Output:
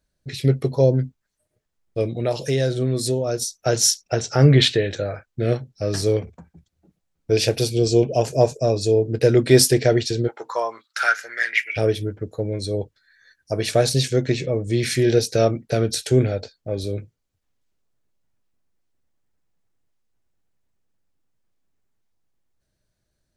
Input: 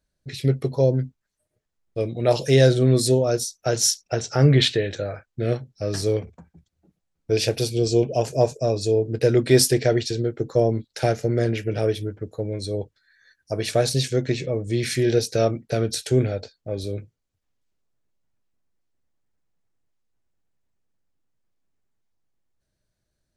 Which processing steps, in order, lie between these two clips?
0:02.11–0:03.42: downward compressor 2.5 to 1, threshold −24 dBFS, peak gain reduction 9 dB
0:10.27–0:11.76: high-pass with resonance 810 Hz → 2,300 Hz, resonance Q 10
level +2.5 dB

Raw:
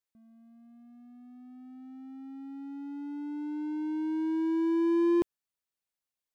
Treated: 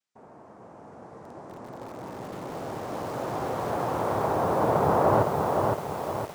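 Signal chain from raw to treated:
parametric band 180 Hz +6 dB 0.51 octaves
cochlear-implant simulation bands 2
treble cut that deepens with the level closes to 1,400 Hz, closed at −25.5 dBFS
dynamic equaliser 230 Hz, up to −8 dB, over −43 dBFS, Q 1.1
feedback echo at a low word length 513 ms, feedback 55%, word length 8 bits, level −3 dB
level +5 dB

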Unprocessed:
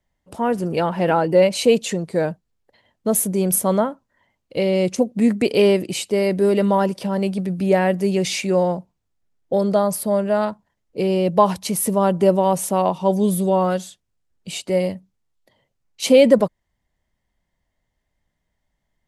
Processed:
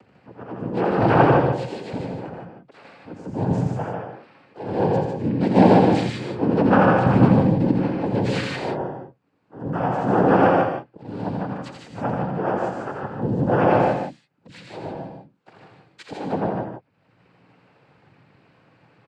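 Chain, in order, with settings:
low-pass filter 1,800 Hz 12 dB per octave
in parallel at +2.5 dB: downward compressor 12 to 1, threshold −23 dBFS, peak gain reduction 16 dB
on the sum: volume swells 663 ms
upward compression, threshold −34 dBFS
pitch-shifted copies added −7 semitones −1 dB, +7 semitones −8 dB
phase shifter 0.83 Hz, delay 4.9 ms, feedback 41%
cochlear-implant simulation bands 8
on a send: loudspeakers that aren't time-aligned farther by 29 metres −5 dB, 51 metres −5 dB
on the sum: reverb whose tail is shaped and stops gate 190 ms rising, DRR 4 dB
level −5.5 dB

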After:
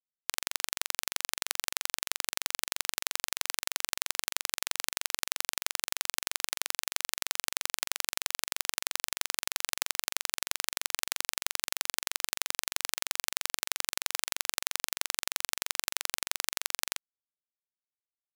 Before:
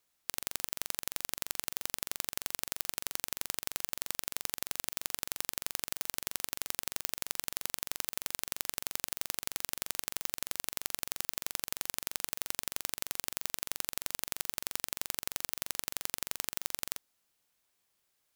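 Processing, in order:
meter weighting curve A
bit reduction 6 bits
pitch vibrato 1.9 Hz 20 cents
level +6 dB

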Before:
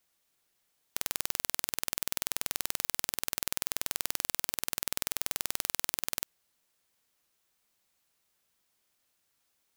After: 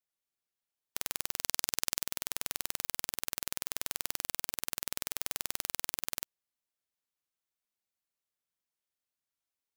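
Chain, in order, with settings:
0:01.38–0:02.03: dynamic equaliser 5,600 Hz, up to +5 dB, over −54 dBFS, Q 1.1
expander for the loud parts 2.5 to 1, over −42 dBFS
level −1 dB

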